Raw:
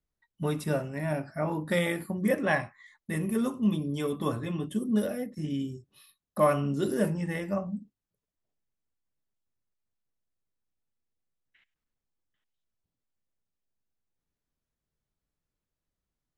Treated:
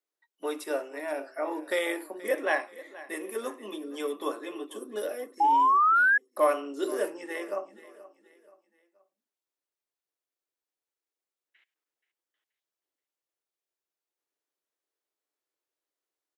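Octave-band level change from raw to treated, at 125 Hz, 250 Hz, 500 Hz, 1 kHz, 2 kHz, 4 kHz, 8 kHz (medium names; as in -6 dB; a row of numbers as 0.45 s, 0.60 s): under -35 dB, -9.5 dB, 0.0 dB, +10.0 dB, +7.5 dB, 0.0 dB, 0.0 dB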